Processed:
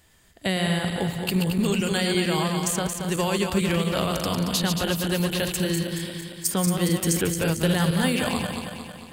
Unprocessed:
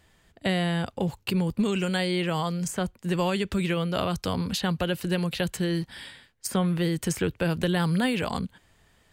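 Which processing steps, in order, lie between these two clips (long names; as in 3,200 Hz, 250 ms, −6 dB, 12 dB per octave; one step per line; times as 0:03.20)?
feedback delay that plays each chunk backwards 113 ms, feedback 74%, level −5 dB
high-shelf EQ 5,700 Hz +11 dB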